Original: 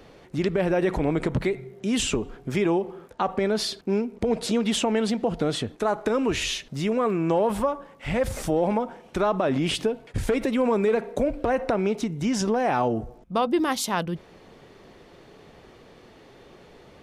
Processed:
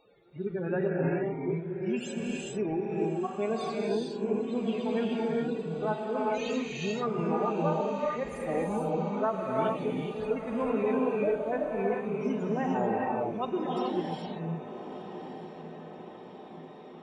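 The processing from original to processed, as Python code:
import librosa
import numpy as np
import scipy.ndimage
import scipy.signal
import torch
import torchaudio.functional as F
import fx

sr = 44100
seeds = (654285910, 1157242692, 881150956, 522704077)

y = fx.hpss_only(x, sr, part='harmonic')
y = scipy.signal.sosfilt(scipy.signal.butter(2, 56.0, 'highpass', fs=sr, output='sos'), y)
y = fx.low_shelf(y, sr, hz=380.0, db=-7.0)
y = y + 0.34 * np.pad(y, (int(5.0 * sr / 1000.0), 0))[:len(y)]
y = fx.spec_topn(y, sr, count=32)
y = fx.wow_flutter(y, sr, seeds[0], rate_hz=2.1, depth_cents=96.0)
y = fx.echo_diffused(y, sr, ms=1245, feedback_pct=59, wet_db=-12)
y = fx.rev_gated(y, sr, seeds[1], gate_ms=460, shape='rising', drr_db=-2.5)
y = y * librosa.db_to_amplitude(-5.5)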